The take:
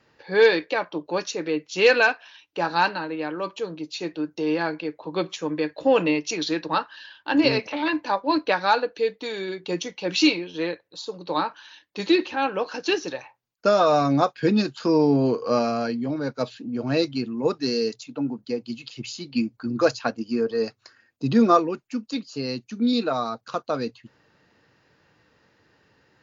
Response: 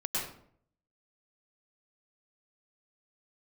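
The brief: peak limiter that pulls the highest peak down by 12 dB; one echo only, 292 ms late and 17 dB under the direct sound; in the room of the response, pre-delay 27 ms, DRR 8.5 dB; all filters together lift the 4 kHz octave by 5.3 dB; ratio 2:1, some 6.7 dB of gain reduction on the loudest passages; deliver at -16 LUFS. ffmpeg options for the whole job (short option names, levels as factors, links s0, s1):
-filter_complex "[0:a]equalizer=f=4000:t=o:g=6,acompressor=threshold=0.0631:ratio=2,alimiter=limit=0.0891:level=0:latency=1,aecho=1:1:292:0.141,asplit=2[s0][s1];[1:a]atrim=start_sample=2205,adelay=27[s2];[s1][s2]afir=irnorm=-1:irlink=0,volume=0.188[s3];[s0][s3]amix=inputs=2:normalize=0,volume=5.62"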